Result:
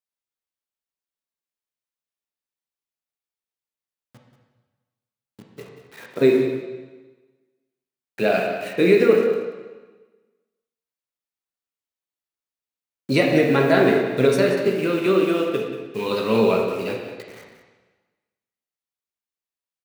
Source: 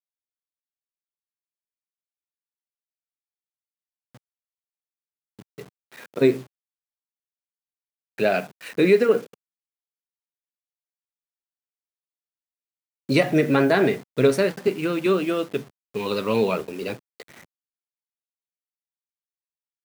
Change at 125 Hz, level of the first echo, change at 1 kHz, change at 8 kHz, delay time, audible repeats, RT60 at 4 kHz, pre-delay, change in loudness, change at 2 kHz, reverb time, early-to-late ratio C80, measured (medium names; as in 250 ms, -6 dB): +1.5 dB, -11.5 dB, +2.5 dB, no reading, 184 ms, 1, 1.2 s, 7 ms, +2.5 dB, +2.5 dB, 1.3 s, 4.5 dB